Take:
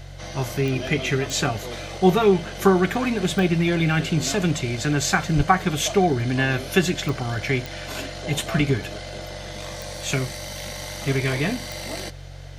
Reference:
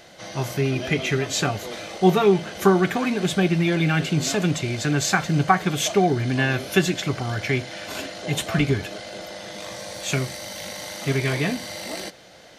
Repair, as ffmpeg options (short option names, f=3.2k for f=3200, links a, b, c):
-filter_complex "[0:a]adeclick=t=4,bandreject=f=46.1:t=h:w=4,bandreject=f=92.2:t=h:w=4,bandreject=f=138.3:t=h:w=4,asplit=3[a][b][c];[a]afade=t=out:st=5.36:d=0.02[d];[b]highpass=f=140:w=0.5412,highpass=f=140:w=1.3066,afade=t=in:st=5.36:d=0.02,afade=t=out:st=5.48:d=0.02[e];[c]afade=t=in:st=5.48:d=0.02[f];[d][e][f]amix=inputs=3:normalize=0"